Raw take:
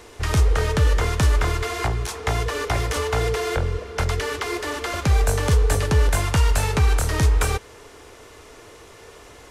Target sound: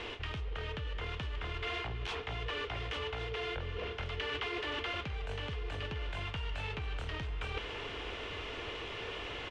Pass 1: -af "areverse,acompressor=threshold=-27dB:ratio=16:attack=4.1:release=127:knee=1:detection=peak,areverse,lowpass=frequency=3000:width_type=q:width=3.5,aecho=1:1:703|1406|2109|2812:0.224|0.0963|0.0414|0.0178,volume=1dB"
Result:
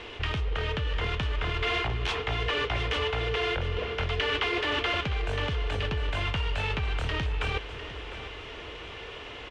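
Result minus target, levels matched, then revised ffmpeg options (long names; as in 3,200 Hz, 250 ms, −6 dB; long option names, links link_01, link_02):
downward compressor: peak gain reduction −9.5 dB; echo 413 ms early
-af "areverse,acompressor=threshold=-37dB:ratio=16:attack=4.1:release=127:knee=1:detection=peak,areverse,lowpass=frequency=3000:width_type=q:width=3.5,aecho=1:1:1116|2232|3348|4464:0.224|0.0963|0.0414|0.0178,volume=1dB"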